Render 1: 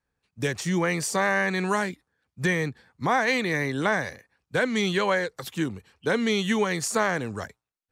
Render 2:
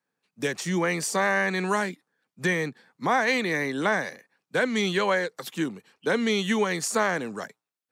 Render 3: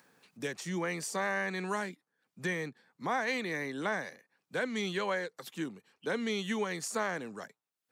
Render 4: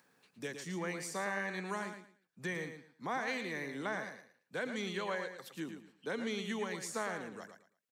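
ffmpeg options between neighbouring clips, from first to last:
ffmpeg -i in.wav -af "highpass=frequency=170:width=0.5412,highpass=frequency=170:width=1.3066" out.wav
ffmpeg -i in.wav -af "acompressor=mode=upward:threshold=-36dB:ratio=2.5,volume=-9dB" out.wav
ffmpeg -i in.wav -af "aecho=1:1:112|224|336:0.398|0.0916|0.0211,volume=-5dB" out.wav

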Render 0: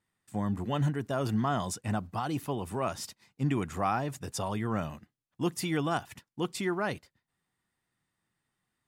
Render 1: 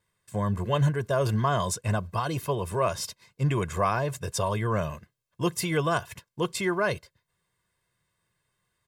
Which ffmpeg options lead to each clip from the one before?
ffmpeg -i in.wav -af "aecho=1:1:1.9:0.74,volume=4dB" out.wav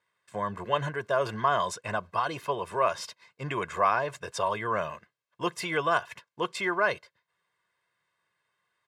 ffmpeg -i in.wav -af "bandpass=frequency=1400:width_type=q:width=0.59:csg=0,volume=3dB" out.wav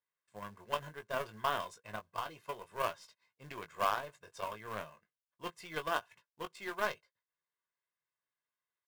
ffmpeg -i in.wav -filter_complex "[0:a]aeval=exprs='0.299*(cos(1*acos(clip(val(0)/0.299,-1,1)))-cos(1*PI/2))+0.0299*(cos(2*acos(clip(val(0)/0.299,-1,1)))-cos(2*PI/2))+0.0376*(cos(3*acos(clip(val(0)/0.299,-1,1)))-cos(3*PI/2))+0.015*(cos(4*acos(clip(val(0)/0.299,-1,1)))-cos(4*PI/2))+0.0168*(cos(7*acos(clip(val(0)/0.299,-1,1)))-cos(7*PI/2))':channel_layout=same,acrusher=bits=4:mode=log:mix=0:aa=0.000001,asplit=2[link_01][link_02];[link_02]adelay=19,volume=-8dB[link_03];[link_01][link_03]amix=inputs=2:normalize=0,volume=-6.5dB" out.wav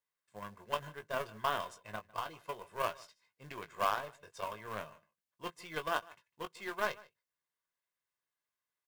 ffmpeg -i in.wav -af "aecho=1:1:152:0.075" out.wav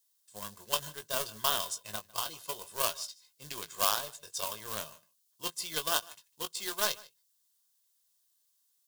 ffmpeg -i in.wav -af "aexciter=amount=8.9:drive=2.6:freq=3200" out.wav

